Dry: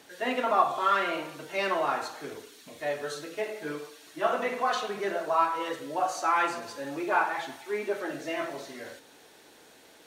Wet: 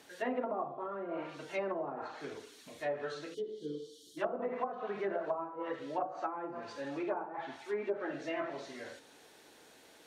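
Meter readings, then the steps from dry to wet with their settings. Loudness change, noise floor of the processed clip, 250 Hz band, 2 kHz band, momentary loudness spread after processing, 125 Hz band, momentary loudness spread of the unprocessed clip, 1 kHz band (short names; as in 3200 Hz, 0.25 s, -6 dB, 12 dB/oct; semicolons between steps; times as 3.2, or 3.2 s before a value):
-9.5 dB, -60 dBFS, -4.0 dB, -12.5 dB, 13 LU, -4.0 dB, 15 LU, -12.5 dB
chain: treble ducked by the level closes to 480 Hz, closed at -23.5 dBFS; spectral gain 3.34–4.17, 550–2900 Hz -29 dB; gain -4 dB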